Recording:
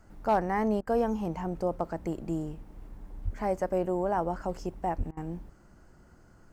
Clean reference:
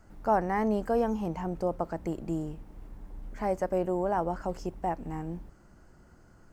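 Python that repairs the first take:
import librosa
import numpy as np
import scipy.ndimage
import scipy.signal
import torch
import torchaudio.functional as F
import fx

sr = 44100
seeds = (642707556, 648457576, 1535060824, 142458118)

y = fx.fix_declip(x, sr, threshold_db=-17.0)
y = fx.highpass(y, sr, hz=140.0, slope=24, at=(3.24, 3.36), fade=0.02)
y = fx.highpass(y, sr, hz=140.0, slope=24, at=(4.97, 5.09), fade=0.02)
y = fx.fix_interpolate(y, sr, at_s=(0.81, 5.11), length_ms=59.0)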